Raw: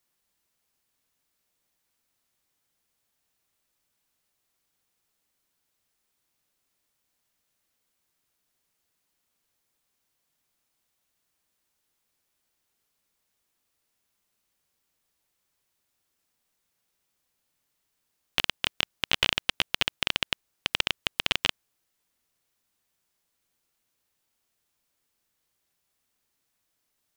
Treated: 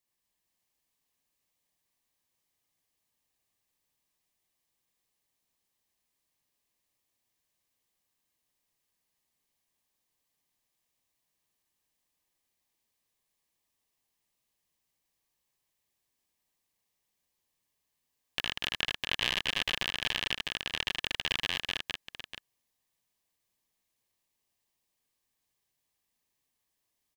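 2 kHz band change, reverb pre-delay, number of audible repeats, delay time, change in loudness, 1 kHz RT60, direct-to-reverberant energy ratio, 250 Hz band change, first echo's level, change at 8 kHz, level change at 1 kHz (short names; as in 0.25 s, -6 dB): -3.0 dB, none, 4, 78 ms, -4.0 dB, none, none, -4.0 dB, -3.0 dB, -4.0 dB, -4.5 dB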